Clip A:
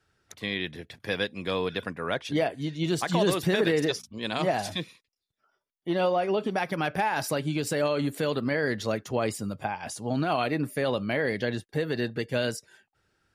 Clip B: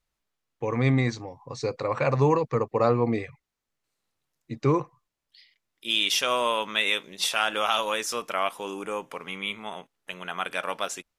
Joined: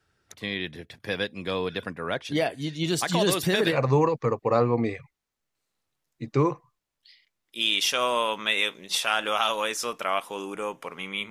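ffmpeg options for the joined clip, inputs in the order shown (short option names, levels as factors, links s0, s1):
-filter_complex "[0:a]asettb=1/sr,asplit=3[s0][s1][s2];[s0]atrim=end=2.314[s3];[s1]atrim=start=2.31:end=3.78,asetpts=PTS-STARTPTS,afade=t=in:d=0.004:c=qsin,afade=t=out:st=1.466:d=0.004:c=qsin,highshelf=f=2600:g=7.5[s4];[s2]atrim=start=3.776[s5];[s3][s4]acrossfade=d=0.004:c1=hsin:c2=qsin[s6];[s6][s5]acrossfade=d=0.004:c1=qsin:c2=hsin,apad=whole_dur=11.3,atrim=end=11.3,atrim=end=3.78,asetpts=PTS-STARTPTS[s7];[1:a]atrim=start=1.99:end=9.59,asetpts=PTS-STARTPTS[s8];[s7][s8]acrossfade=d=0.08:c1=tri:c2=tri"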